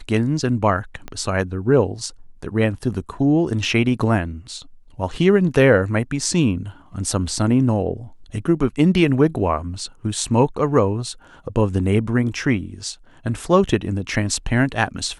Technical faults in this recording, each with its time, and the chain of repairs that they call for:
1.08 pop -17 dBFS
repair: de-click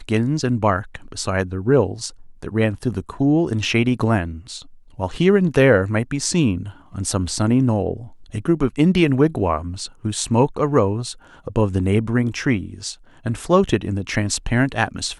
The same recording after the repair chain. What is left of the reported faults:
1.08 pop

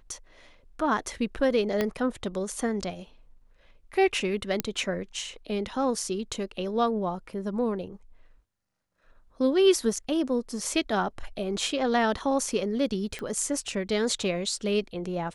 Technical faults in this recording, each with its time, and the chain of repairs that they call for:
1.81 pop -12 dBFS
4.6 pop -9 dBFS
13.19 pop -21 dBFS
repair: de-click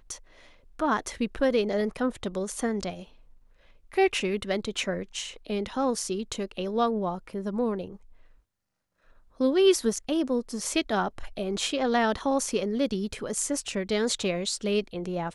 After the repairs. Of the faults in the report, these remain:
1.81 pop

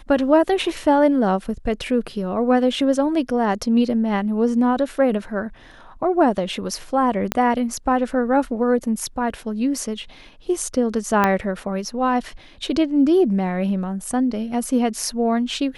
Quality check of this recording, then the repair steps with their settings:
7.32 pop -5 dBFS
11.24 pop -5 dBFS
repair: de-click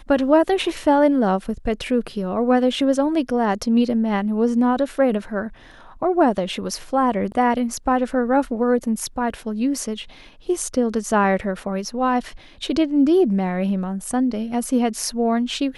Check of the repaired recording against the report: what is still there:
7.32 pop
11.24 pop

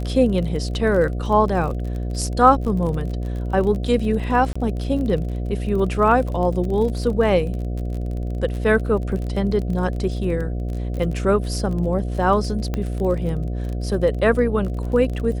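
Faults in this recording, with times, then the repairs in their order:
buzz 60 Hz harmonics 12 -25 dBFS
crackle 31/s -28 dBFS
4.53–4.55 gap 25 ms
12.74 pop -12 dBFS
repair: de-click; de-hum 60 Hz, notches 12; interpolate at 4.53, 25 ms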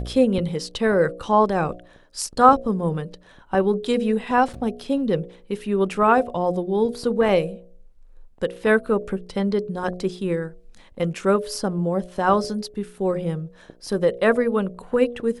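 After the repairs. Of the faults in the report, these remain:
none

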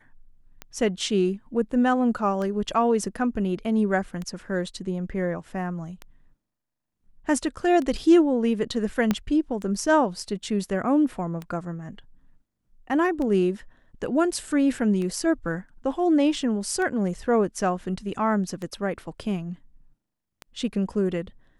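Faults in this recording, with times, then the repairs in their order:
tick 33 1/3 rpm -20 dBFS
9.11 pop -9 dBFS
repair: de-click

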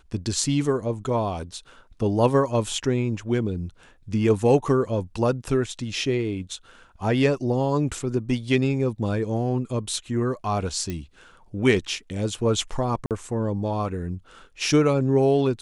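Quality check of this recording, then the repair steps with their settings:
10.9 pop -17 dBFS
13.06–13.11 gap 48 ms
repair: de-click; interpolate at 13.06, 48 ms

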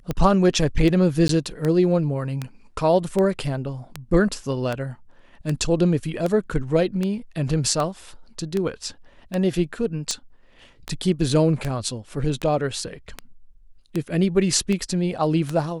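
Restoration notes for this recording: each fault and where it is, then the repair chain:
tick 78 rpm -12 dBFS
1.28–1.29 gap 13 ms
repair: de-click; interpolate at 1.28, 13 ms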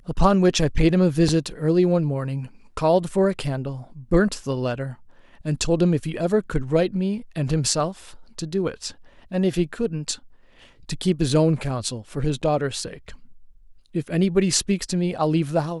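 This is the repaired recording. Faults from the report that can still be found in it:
none

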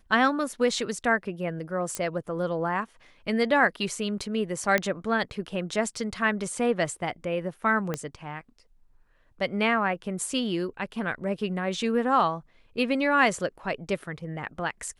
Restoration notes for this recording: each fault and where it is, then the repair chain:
1.95 pop -13 dBFS
4.78 pop -10 dBFS
7.94 pop -15 dBFS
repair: de-click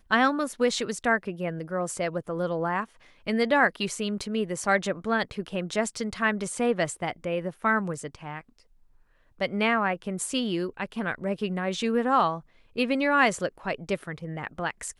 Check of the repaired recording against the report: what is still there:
7.94 pop

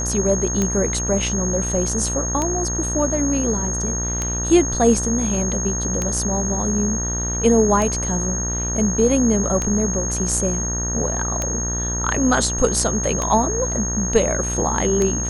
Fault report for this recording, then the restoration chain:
buzz 60 Hz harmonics 32 -26 dBFS
tick 33 1/3 rpm -8 dBFS
tone 6500 Hz -24 dBFS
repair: de-click; de-hum 60 Hz, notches 32; notch 6500 Hz, Q 30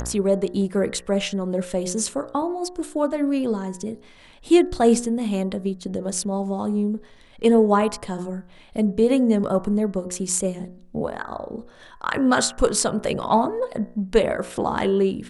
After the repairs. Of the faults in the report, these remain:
none

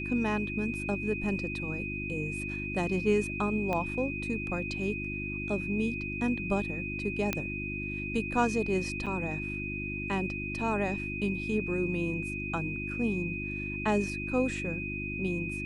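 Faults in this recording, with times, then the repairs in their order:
hum 50 Hz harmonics 7 -38 dBFS
tone 2500 Hz -36 dBFS
3.73 pop -19 dBFS
7.33 pop -13 dBFS
9.06–9.07 gap 6.5 ms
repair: de-click; de-hum 50 Hz, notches 7; notch 2500 Hz, Q 30; interpolate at 9.06, 6.5 ms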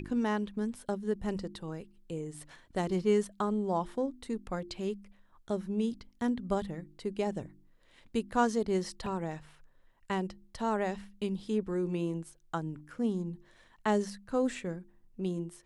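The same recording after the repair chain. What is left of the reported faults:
3.73 pop
7.33 pop

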